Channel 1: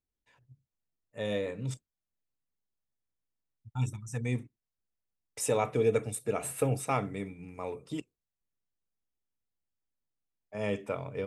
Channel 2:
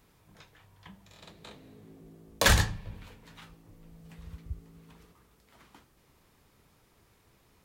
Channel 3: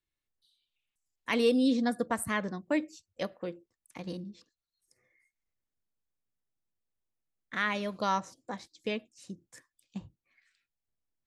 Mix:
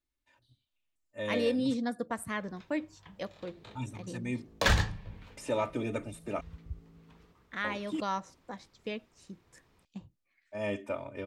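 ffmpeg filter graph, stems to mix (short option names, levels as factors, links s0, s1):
-filter_complex "[0:a]aecho=1:1:3.3:0.94,acrossover=split=4300[s0][s1];[s1]acompressor=threshold=0.00708:ratio=4:attack=1:release=60[s2];[s0][s2]amix=inputs=2:normalize=0,volume=0.668,asplit=3[s3][s4][s5];[s3]atrim=end=6.41,asetpts=PTS-STARTPTS,afade=t=out:st=6.406:d=0.004:c=hsin[s6];[s4]atrim=start=6.41:end=7.64,asetpts=PTS-STARTPTS,volume=0[s7];[s5]atrim=start=7.64,asetpts=PTS-STARTPTS,afade=t=in:d=0.004:c=hsin[s8];[s6][s7][s8]concat=n=3:v=0:a=1[s9];[1:a]equalizer=f=11000:t=o:w=1:g=-10.5,adelay=2200,volume=0.75[s10];[2:a]volume=0.631[s11];[s9][s10][s11]amix=inputs=3:normalize=0,highshelf=f=8900:g=-6"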